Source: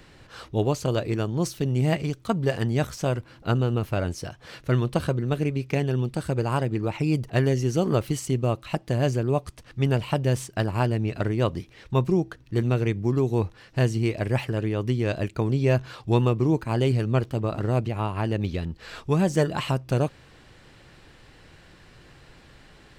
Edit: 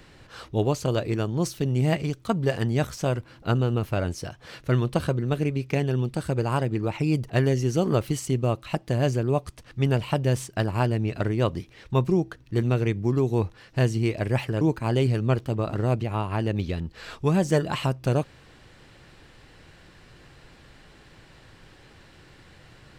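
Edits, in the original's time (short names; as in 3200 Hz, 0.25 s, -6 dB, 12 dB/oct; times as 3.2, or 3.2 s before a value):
14.61–16.46 cut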